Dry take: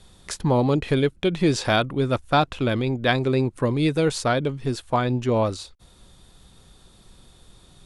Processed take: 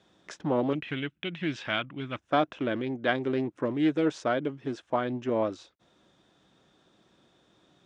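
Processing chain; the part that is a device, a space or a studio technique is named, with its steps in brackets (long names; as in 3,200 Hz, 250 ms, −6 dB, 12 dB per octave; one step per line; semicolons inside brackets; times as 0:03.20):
0:00.73–0:02.18: drawn EQ curve 160 Hz 0 dB, 470 Hz −13 dB, 2,900 Hz +6 dB, 5,400 Hz −6 dB
full-range speaker at full volume (highs frequency-modulated by the lows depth 0.23 ms; loudspeaker in its box 180–6,000 Hz, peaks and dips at 310 Hz +7 dB, 630 Hz +5 dB, 1,600 Hz +4 dB, 4,400 Hz −10 dB)
level −8 dB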